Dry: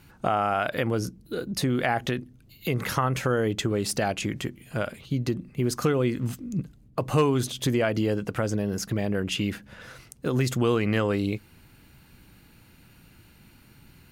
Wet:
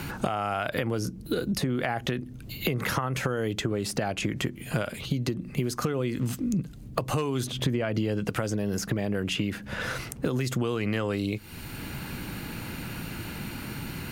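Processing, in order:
downward compressor, threshold −32 dBFS, peak gain reduction 14 dB
0:07.47–0:08.29: bass and treble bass +4 dB, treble −7 dB
multiband upward and downward compressor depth 70%
level +6.5 dB

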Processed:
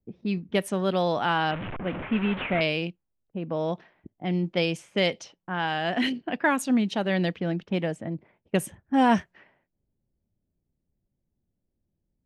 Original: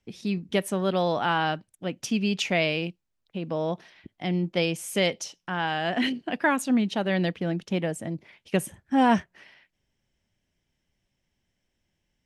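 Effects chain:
0:01.51–0:02.61: linear delta modulator 16 kbit/s, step −27.5 dBFS
low-pass that shuts in the quiet parts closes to 440 Hz, open at −21.5 dBFS

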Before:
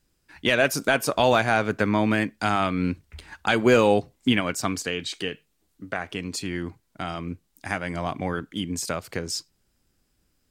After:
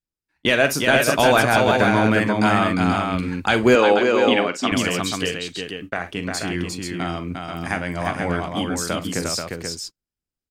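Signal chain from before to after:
multi-tap delay 45/60/353/484 ms −12/−19/−4/−5.5 dB
noise gate −37 dBFS, range −26 dB
0:03.75–0:04.72: band-pass filter 280–5,400 Hz
level +3 dB

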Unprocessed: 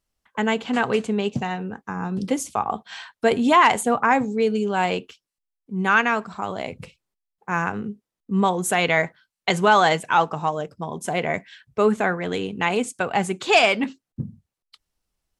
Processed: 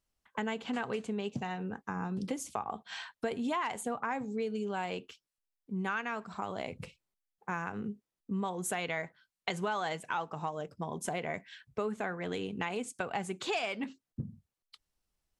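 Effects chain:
downward compressor 4 to 1, threshold −28 dBFS, peak gain reduction 14.5 dB
level −5 dB

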